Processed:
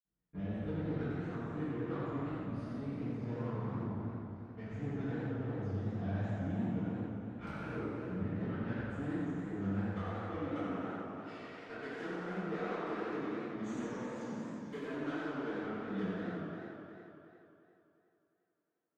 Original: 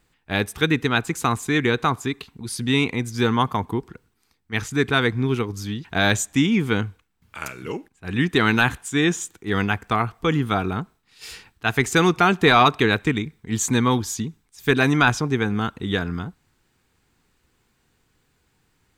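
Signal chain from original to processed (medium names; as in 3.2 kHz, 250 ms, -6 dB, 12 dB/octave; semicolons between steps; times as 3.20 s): partial rectifier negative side -7 dB; high-pass 46 Hz 12 dB/octave, from 9.67 s 360 Hz; gate with hold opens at -54 dBFS; low-pass 1.9 kHz 12 dB/octave; tilt shelf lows +4 dB, about 780 Hz; compression 6:1, threshold -36 dBFS, peak gain reduction 20.5 dB; rotary cabinet horn 0.85 Hz, later 5.5 Hz, at 3.59 s; saturation -37 dBFS, distortion -12 dB; reverberation RT60 2.7 s, pre-delay 48 ms; modulated delay 89 ms, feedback 80%, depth 166 cents, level -6 dB; trim -2.5 dB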